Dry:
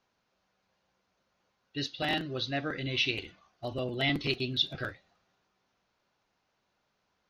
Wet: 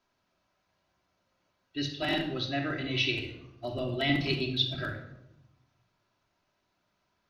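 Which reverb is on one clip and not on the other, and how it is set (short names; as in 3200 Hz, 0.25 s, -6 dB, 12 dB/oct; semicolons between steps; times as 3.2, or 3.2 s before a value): shoebox room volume 2700 m³, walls furnished, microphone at 2.9 m; gain -2 dB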